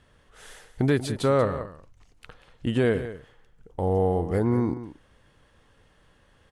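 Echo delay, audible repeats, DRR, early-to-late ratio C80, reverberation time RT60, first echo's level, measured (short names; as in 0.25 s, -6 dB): 0.187 s, 1, none, none, none, -13.0 dB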